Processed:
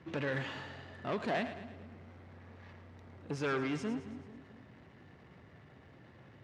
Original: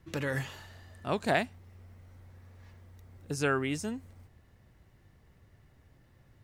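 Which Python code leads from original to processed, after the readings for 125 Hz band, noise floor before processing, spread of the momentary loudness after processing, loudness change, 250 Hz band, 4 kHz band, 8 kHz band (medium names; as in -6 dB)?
-4.5 dB, -63 dBFS, 23 LU, -5.0 dB, -2.0 dB, -4.5 dB, -12.5 dB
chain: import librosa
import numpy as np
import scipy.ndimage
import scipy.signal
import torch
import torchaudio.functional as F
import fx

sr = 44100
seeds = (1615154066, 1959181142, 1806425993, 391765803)

y = 10.0 ** (-29.5 / 20.0) * np.tanh(x / 10.0 ** (-29.5 / 20.0))
y = fx.power_curve(y, sr, exponent=0.7)
y = fx.bandpass_edges(y, sr, low_hz=150.0, high_hz=3300.0)
y = fx.echo_split(y, sr, split_hz=400.0, low_ms=217, high_ms=109, feedback_pct=52, wet_db=-11.0)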